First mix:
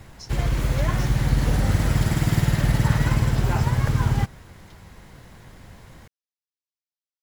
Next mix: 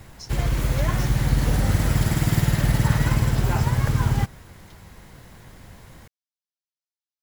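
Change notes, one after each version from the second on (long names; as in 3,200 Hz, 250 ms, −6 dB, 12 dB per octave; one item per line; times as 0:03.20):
master: add high-shelf EQ 10,000 Hz +7 dB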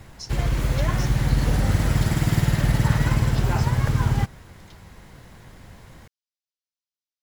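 speech +4.5 dB
master: add high-shelf EQ 10,000 Hz −7 dB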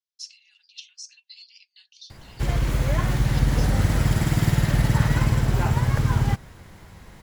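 background: entry +2.10 s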